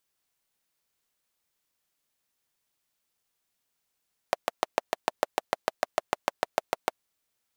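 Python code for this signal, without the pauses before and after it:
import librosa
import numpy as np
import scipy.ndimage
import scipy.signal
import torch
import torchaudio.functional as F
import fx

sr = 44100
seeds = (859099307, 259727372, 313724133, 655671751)

y = fx.engine_single(sr, seeds[0], length_s=2.63, rpm=800, resonances_hz=(650.0,))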